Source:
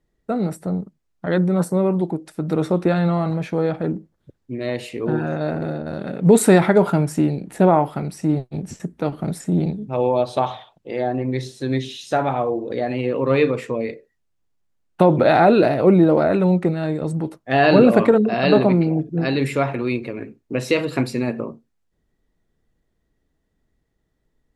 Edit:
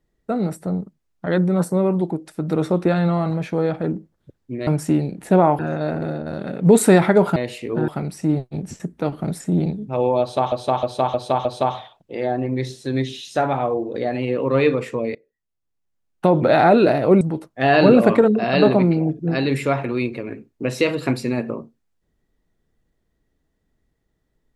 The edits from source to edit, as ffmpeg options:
-filter_complex "[0:a]asplit=11[a][b][c][d][e][f][g][h][i][j][k];[a]atrim=end=4.672[l];[b]atrim=start=6.958:end=7.882[m];[c]atrim=start=5.188:end=6.962[n];[d]atrim=start=4.668:end=5.192[o];[e]atrim=start=7.878:end=10.522[p];[f]atrim=start=10.208:end=10.522[q];[g]atrim=start=10.208:end=10.522[r];[h]atrim=start=10.208:end=10.522[s];[i]atrim=start=10.208:end=13.91,asetpts=PTS-STARTPTS,afade=t=out:st=3.698:d=0.004:c=hsin:silence=0.112202[t];[j]atrim=start=13.91:end=15.972,asetpts=PTS-STARTPTS,afade=t=in:d=1.44:silence=0.112202[u];[k]atrim=start=17.108[v];[l][m]acrossfade=d=0.004:c1=hsin:c2=hsin[w];[w][n]acrossfade=d=0.004:c1=hsin:c2=hsin[x];[x][o]acrossfade=d=0.004:c1=hsin:c2=hsin[y];[y][p]acrossfade=d=0.004:c1=hsin:c2=hsin[z];[z][q]acrossfade=d=0.004:c1=hsin:c2=hsin[aa];[aa][r]acrossfade=d=0.004:c1=hsin:c2=hsin[ab];[ab][s]acrossfade=d=0.004:c1=hsin:c2=hsin[ac];[t][u]concat=n=2:v=0:a=1[ad];[ac][ad]acrossfade=d=0.004:c1=hsin:c2=hsin[ae];[ae][v]acrossfade=d=0.004:c1=hsin:c2=hsin"

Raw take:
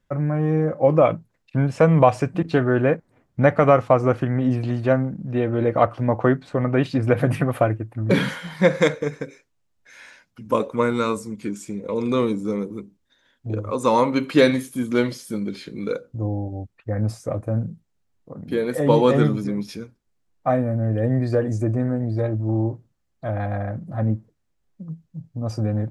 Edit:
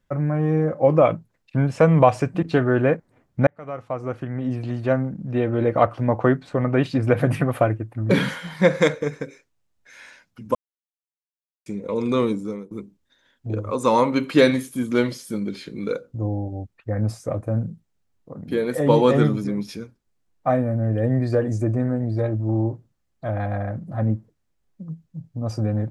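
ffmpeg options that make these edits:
-filter_complex "[0:a]asplit=5[a][b][c][d][e];[a]atrim=end=3.47,asetpts=PTS-STARTPTS,afade=t=out:st=3.466:d=0.004:c=hsin[f];[b]atrim=start=3.47:end=10.55,asetpts=PTS-STARTPTS,afade=t=in:d=1.82,afade=t=out:st=7.076:d=0.004:c=hsin[g];[c]atrim=start=10.55:end=11.66,asetpts=PTS-STARTPTS,volume=0[h];[d]atrim=start=11.66:end=12.71,asetpts=PTS-STARTPTS,afade=t=in:d=0.004:c=hsin,afade=t=out:st=0.66:d=0.39:silence=0.105925[i];[e]atrim=start=12.71,asetpts=PTS-STARTPTS,afade=t=in:d=0.004:c=hsin:silence=0.105925[j];[f][g][h][i][j]concat=n=5:v=0:a=1"

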